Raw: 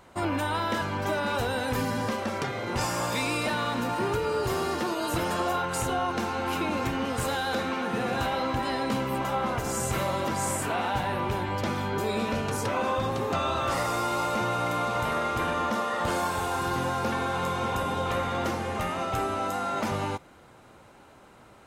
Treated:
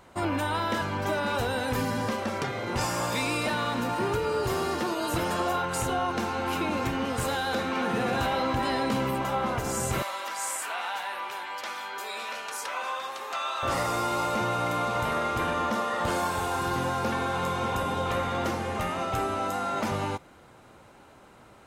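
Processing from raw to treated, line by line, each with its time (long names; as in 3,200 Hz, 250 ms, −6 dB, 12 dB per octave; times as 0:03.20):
0:07.75–0:09.11: envelope flattener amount 50%
0:10.02–0:13.63: high-pass filter 1,000 Hz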